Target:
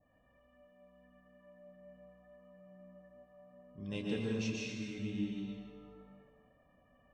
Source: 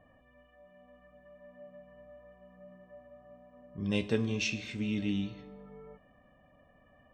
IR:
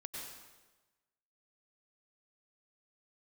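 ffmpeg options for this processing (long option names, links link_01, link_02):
-filter_complex "[1:a]atrim=start_sample=2205,asetrate=34839,aresample=44100[link_01];[0:a][link_01]afir=irnorm=-1:irlink=0,adynamicequalizer=threshold=0.00355:dfrequency=2600:dqfactor=0.97:tfrequency=2600:tqfactor=0.97:attack=5:release=100:ratio=0.375:range=2:mode=cutabove:tftype=bell,volume=-5dB"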